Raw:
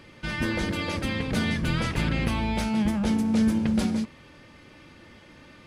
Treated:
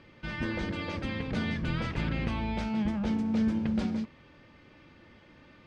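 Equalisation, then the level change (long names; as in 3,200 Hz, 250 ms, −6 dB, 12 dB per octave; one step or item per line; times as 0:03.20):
high-frequency loss of the air 130 metres
−5.0 dB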